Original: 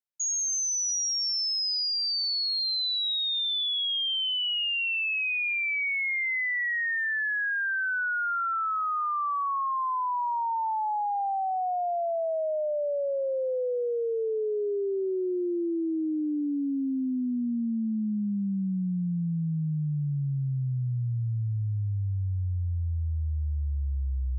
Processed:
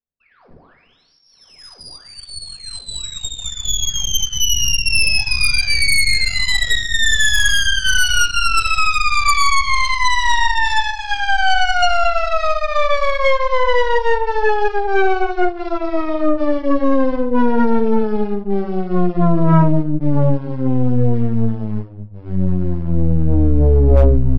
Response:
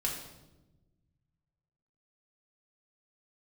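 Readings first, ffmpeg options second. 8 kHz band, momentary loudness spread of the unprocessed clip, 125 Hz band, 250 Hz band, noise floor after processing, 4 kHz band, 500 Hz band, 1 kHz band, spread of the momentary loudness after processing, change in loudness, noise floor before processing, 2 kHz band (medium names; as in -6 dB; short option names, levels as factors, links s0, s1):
no reading, 5 LU, +11.0 dB, +11.0 dB, -50 dBFS, +8.5 dB, +11.5 dB, +11.0 dB, 11 LU, +11.0 dB, -29 dBFS, +11.0 dB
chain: -filter_complex "[0:a]bandreject=f=50:t=h:w=6,bandreject=f=100:t=h:w=6,bandreject=f=150:t=h:w=6,bandreject=f=200:t=h:w=6,bandreject=f=250:t=h:w=6,bandreject=f=300:t=h:w=6,bandreject=f=350:t=h:w=6,bandreject=f=400:t=h:w=6,bandreject=f=450:t=h:w=6,asplit=2[s0][s1];[s1]alimiter=level_in=2.37:limit=0.0631:level=0:latency=1:release=217,volume=0.422,volume=0.708[s2];[s0][s2]amix=inputs=2:normalize=0,adynamicsmooth=sensitivity=2.5:basefreq=560,aresample=11025,volume=21.1,asoftclip=hard,volume=0.0473,aresample=44100,asplit=2[s3][s4];[s4]adelay=202,lowpass=f=2500:p=1,volume=0.188,asplit=2[s5][s6];[s6]adelay=202,lowpass=f=2500:p=1,volume=0.29,asplit=2[s7][s8];[s8]adelay=202,lowpass=f=2500:p=1,volume=0.29[s9];[s3][s5][s7][s9]amix=inputs=4:normalize=0[s10];[1:a]atrim=start_sample=2205,afade=t=out:st=0.21:d=0.01,atrim=end_sample=9702[s11];[s10][s11]afir=irnorm=-1:irlink=0,aeval=exprs='0.299*(cos(1*acos(clip(val(0)/0.299,-1,1)))-cos(1*PI/2))+0.0299*(cos(6*acos(clip(val(0)/0.299,-1,1)))-cos(6*PI/2))+0.133*(cos(8*acos(clip(val(0)/0.299,-1,1)))-cos(8*PI/2))':c=same,volume=1.58"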